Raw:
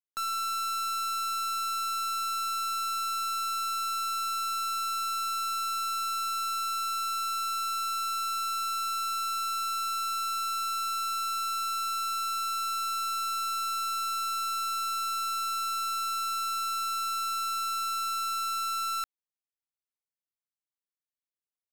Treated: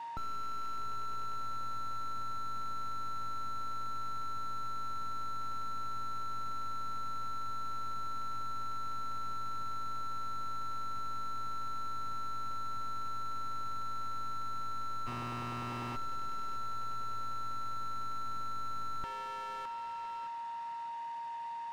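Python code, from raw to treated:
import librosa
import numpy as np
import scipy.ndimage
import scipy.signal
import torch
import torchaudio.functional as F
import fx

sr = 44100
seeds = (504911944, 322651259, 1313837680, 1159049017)

p1 = fx.spec_flatten(x, sr, power=0.32, at=(15.06, 15.95), fade=0.02)
p2 = fx.quant_dither(p1, sr, seeds[0], bits=8, dither='triangular')
p3 = p1 + F.gain(torch.from_numpy(p2), -11.0).numpy()
p4 = scipy.signal.sosfilt(scipy.signal.butter(2, 2100.0, 'lowpass', fs=sr, output='sos'), p3)
p5 = p4 + 10.0 ** (-54.0 / 20.0) * np.sin(2.0 * np.pi * 930.0 * np.arange(len(p4)) / sr)
p6 = fx.highpass(p5, sr, hz=470.0, slope=6)
p7 = fx.echo_feedback(p6, sr, ms=615, feedback_pct=32, wet_db=-15.5)
p8 = 10.0 ** (-33.5 / 20.0) * np.tanh(p7 / 10.0 ** (-33.5 / 20.0))
p9 = p8 + 0.62 * np.pad(p8, (int(1.1 * sr / 1000.0), 0))[:len(p8)]
p10 = fx.slew_limit(p9, sr, full_power_hz=3.9)
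y = F.gain(torch.from_numpy(p10), 11.0).numpy()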